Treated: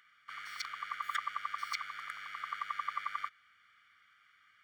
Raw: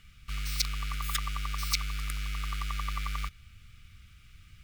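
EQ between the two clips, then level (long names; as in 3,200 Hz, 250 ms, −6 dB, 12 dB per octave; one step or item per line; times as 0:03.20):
Savitzky-Golay smoothing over 41 samples
high-pass filter 1,300 Hz 12 dB per octave
+6.5 dB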